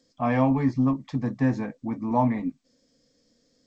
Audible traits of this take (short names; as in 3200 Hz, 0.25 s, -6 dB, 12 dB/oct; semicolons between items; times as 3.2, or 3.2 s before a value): G.722